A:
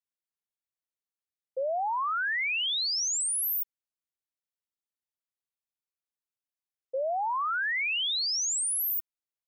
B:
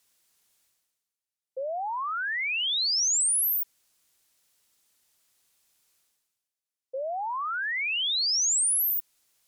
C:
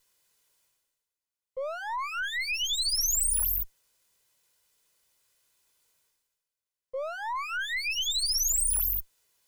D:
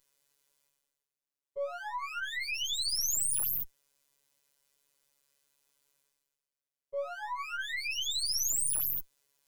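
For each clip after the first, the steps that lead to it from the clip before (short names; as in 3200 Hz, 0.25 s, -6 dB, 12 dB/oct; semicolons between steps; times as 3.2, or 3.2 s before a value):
reverse; upward compressor, threshold -53 dBFS; reverse; bell 8400 Hz +7.5 dB 2.6 oct; gain -2.5 dB
minimum comb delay 2 ms
robotiser 141 Hz; small resonant body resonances 330/500 Hz, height 7 dB, ringing for 45 ms; gain -2 dB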